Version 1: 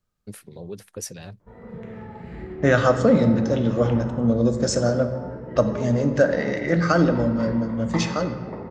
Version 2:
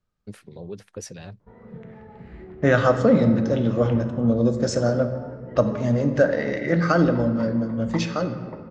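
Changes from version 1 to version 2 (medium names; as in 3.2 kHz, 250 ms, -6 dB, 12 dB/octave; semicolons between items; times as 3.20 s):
background: send -11.5 dB; master: add distance through air 73 m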